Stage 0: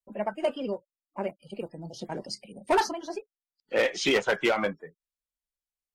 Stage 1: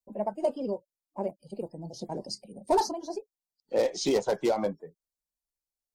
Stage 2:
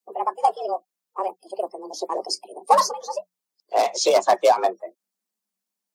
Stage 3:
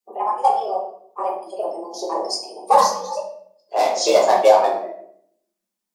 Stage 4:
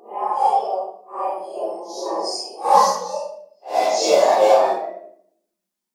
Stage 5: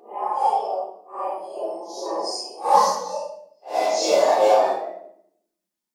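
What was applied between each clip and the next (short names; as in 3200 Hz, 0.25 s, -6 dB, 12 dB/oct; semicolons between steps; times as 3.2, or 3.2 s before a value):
band shelf 2000 Hz -15 dB
frequency shift +180 Hz; harmonic-percussive split percussive +9 dB; gain +1.5 dB
shoebox room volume 120 m³, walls mixed, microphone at 1.3 m; gain -2.5 dB
phase scrambler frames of 0.2 s
FDN reverb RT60 0.61 s, low-frequency decay 1.5×, high-frequency decay 0.9×, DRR 9 dB; gain -3 dB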